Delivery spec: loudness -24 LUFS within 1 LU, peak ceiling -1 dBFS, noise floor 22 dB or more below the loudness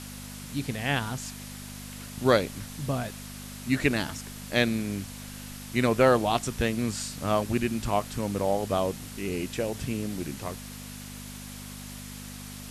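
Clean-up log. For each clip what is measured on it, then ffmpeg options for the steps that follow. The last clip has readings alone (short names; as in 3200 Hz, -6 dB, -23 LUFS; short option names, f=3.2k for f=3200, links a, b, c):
hum 50 Hz; harmonics up to 250 Hz; hum level -40 dBFS; noise floor -41 dBFS; noise floor target -51 dBFS; loudness -28.5 LUFS; peak -7.5 dBFS; loudness target -24.0 LUFS
-> -af "bandreject=f=50:t=h:w=4,bandreject=f=100:t=h:w=4,bandreject=f=150:t=h:w=4,bandreject=f=200:t=h:w=4,bandreject=f=250:t=h:w=4"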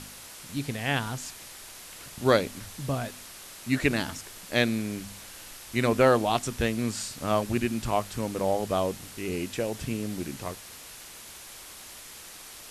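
hum none; noise floor -46 dBFS; noise floor target -51 dBFS
-> -af "afftdn=nr=6:nf=-46"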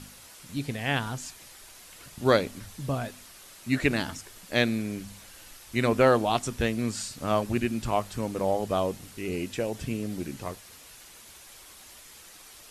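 noise floor -50 dBFS; noise floor target -51 dBFS
-> -af "afftdn=nr=6:nf=-50"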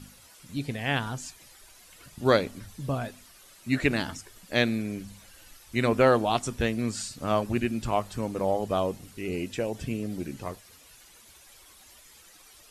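noise floor -54 dBFS; loudness -28.5 LUFS; peak -8.5 dBFS; loudness target -24.0 LUFS
-> -af "volume=4.5dB"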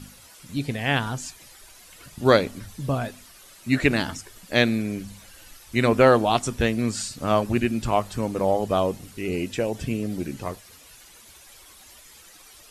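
loudness -24.0 LUFS; peak -4.0 dBFS; noise floor -50 dBFS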